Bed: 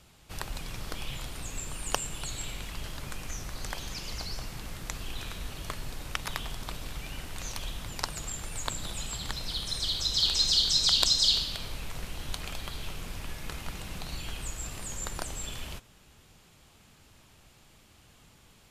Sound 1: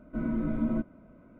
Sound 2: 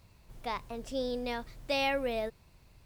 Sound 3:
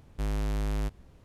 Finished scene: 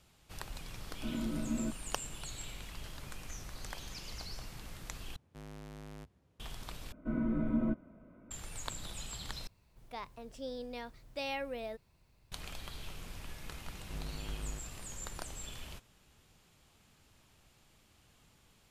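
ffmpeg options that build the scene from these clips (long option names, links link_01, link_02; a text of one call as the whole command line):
ffmpeg -i bed.wav -i cue0.wav -i cue1.wav -i cue2.wav -filter_complex "[1:a]asplit=2[link_01][link_02];[3:a]asplit=2[link_03][link_04];[0:a]volume=-7.5dB[link_05];[link_03]highpass=frequency=72:width=0.5412,highpass=frequency=72:width=1.3066[link_06];[link_05]asplit=4[link_07][link_08][link_09][link_10];[link_07]atrim=end=5.164[link_11];[link_06]atrim=end=1.24,asetpts=PTS-STARTPTS,volume=-13dB[link_12];[link_08]atrim=start=6.396:end=6.924[link_13];[link_02]atrim=end=1.39,asetpts=PTS-STARTPTS,volume=-3dB[link_14];[link_09]atrim=start=8.306:end=9.474[link_15];[2:a]atrim=end=2.85,asetpts=PTS-STARTPTS,volume=-8dB[link_16];[link_10]atrim=start=12.316[link_17];[link_01]atrim=end=1.39,asetpts=PTS-STARTPTS,volume=-7dB,afade=type=in:duration=0.004:curve=hsin,afade=type=out:start_time=1.386:duration=0.004:curve=hsin,adelay=890[link_18];[link_04]atrim=end=1.24,asetpts=PTS-STARTPTS,volume=-13dB,afade=type=in:duration=0.004:curve=hsin,afade=type=out:start_time=1.236:duration=0.004:curve=hsin,adelay=13710[link_19];[link_11][link_12]acrossfade=duration=0.004:curve1=hsin:curve2=hsin[link_20];[link_20][link_13]acrossfade=duration=0.004:curve1=hsin:curve2=hsin[link_21];[link_21][link_14]acrossfade=duration=0.004:curve1=hsin:curve2=hsin[link_22];[link_22][link_15]acrossfade=duration=0.004:curve1=hsin:curve2=hsin[link_23];[link_23][link_16]acrossfade=duration=0.004:curve1=hsin:curve2=hsin[link_24];[link_24][link_17]acrossfade=duration=0.004:curve1=hsin:curve2=hsin[link_25];[link_25][link_18][link_19]amix=inputs=3:normalize=0" out.wav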